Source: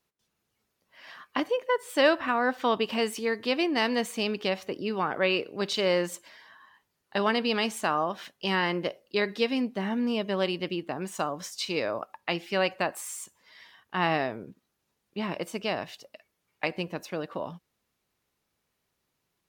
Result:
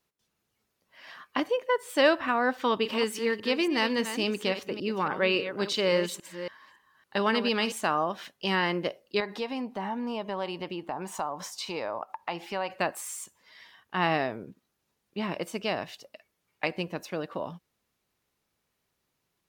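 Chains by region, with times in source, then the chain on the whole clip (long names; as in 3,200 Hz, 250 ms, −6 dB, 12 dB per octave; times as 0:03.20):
0:02.56–0:07.72: delay that plays each chunk backwards 280 ms, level −10 dB + notch filter 700 Hz, Q 6.9
0:09.20–0:12.70: parametric band 890 Hz +14 dB 0.8 octaves + downward compressor 2 to 1, threshold −35 dBFS
whole clip: no processing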